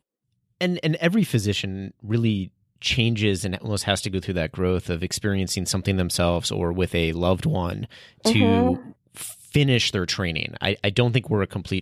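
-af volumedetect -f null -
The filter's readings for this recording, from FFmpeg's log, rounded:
mean_volume: -23.5 dB
max_volume: -6.0 dB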